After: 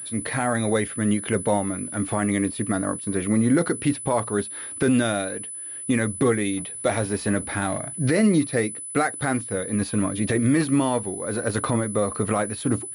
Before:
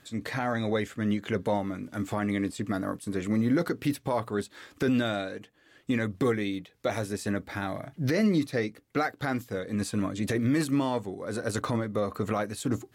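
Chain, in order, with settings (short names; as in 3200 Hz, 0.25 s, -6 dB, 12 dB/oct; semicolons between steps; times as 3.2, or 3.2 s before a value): 6.57–7.78 G.711 law mismatch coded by mu; pulse-width modulation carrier 10000 Hz; gain +5.5 dB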